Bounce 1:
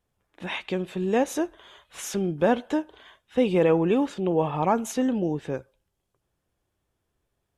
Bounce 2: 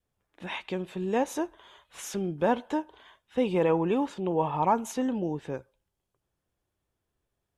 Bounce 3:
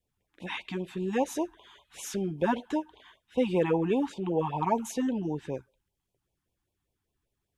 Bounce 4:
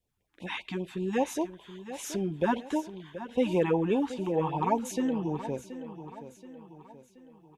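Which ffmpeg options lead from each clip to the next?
-af "adynamicequalizer=threshold=0.00631:dfrequency=940:dqfactor=4:tfrequency=940:tqfactor=4:attack=5:release=100:ratio=0.375:range=4:mode=boostabove:tftype=bell,volume=-4.5dB"
-af "afftfilt=real='re*(1-between(b*sr/1024,470*pow(1600/470,0.5+0.5*sin(2*PI*5.1*pts/sr))/1.41,470*pow(1600/470,0.5+0.5*sin(2*PI*5.1*pts/sr))*1.41))':imag='im*(1-between(b*sr/1024,470*pow(1600/470,0.5+0.5*sin(2*PI*5.1*pts/sr))/1.41,470*pow(1600/470,0.5+0.5*sin(2*PI*5.1*pts/sr))*1.41))':win_size=1024:overlap=0.75"
-af "aecho=1:1:727|1454|2181|2908|3635:0.224|0.103|0.0474|0.0218|0.01"

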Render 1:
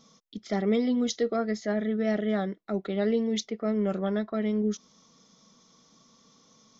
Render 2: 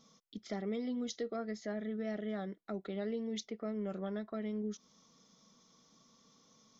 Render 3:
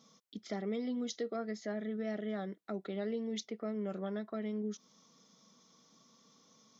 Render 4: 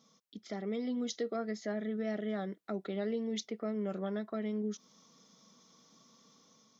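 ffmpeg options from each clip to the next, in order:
-af "acompressor=threshold=-33dB:ratio=2,volume=-6dB"
-af "highpass=130,volume=1dB"
-af "dynaudnorm=f=270:g=5:m=5dB,volume=-3dB"

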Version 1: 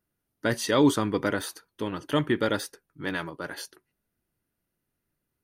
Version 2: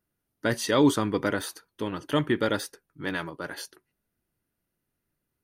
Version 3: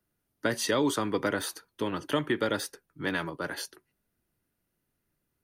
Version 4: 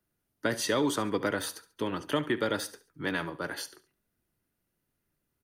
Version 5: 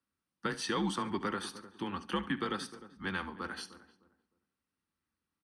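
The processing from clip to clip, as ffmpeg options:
-af anull
-filter_complex "[0:a]acrossover=split=160|340[a][b][c];[a]acompressor=threshold=-45dB:ratio=4[d];[b]acompressor=threshold=-36dB:ratio=4[e];[c]acompressor=threshold=-27dB:ratio=4[f];[d][e][f]amix=inputs=3:normalize=0,volume=1.5dB"
-af "aecho=1:1:70|140|210:0.141|0.0494|0.0173,volume=-1dB"
-filter_complex "[0:a]afreqshift=-93,highpass=100,equalizer=f=120:t=q:w=4:g=-9,equalizer=f=440:t=q:w=4:g=-4,equalizer=f=640:t=q:w=4:g=-8,equalizer=f=1.1k:t=q:w=4:g=4,equalizer=f=6.9k:t=q:w=4:g=-9,lowpass=f=9k:w=0.5412,lowpass=f=9k:w=1.3066,asplit=2[a][b];[b]adelay=305,lowpass=f=950:p=1,volume=-14dB,asplit=2[c][d];[d]adelay=305,lowpass=f=950:p=1,volume=0.27,asplit=2[e][f];[f]adelay=305,lowpass=f=950:p=1,volume=0.27[g];[a][c][e][g]amix=inputs=4:normalize=0,volume=-4dB"

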